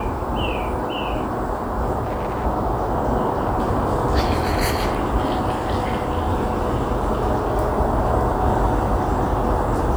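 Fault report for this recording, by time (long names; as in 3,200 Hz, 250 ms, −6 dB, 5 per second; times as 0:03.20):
0:02.03–0:02.46: clipping −20 dBFS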